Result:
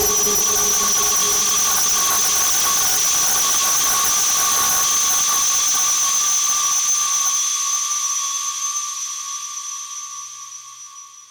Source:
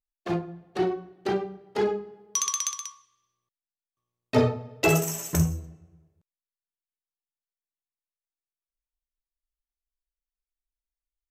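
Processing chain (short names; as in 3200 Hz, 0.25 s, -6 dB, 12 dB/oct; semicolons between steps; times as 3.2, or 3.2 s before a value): Paulstretch 11×, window 1.00 s, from 2.22; sine folder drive 12 dB, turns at -17 dBFS; gain +3 dB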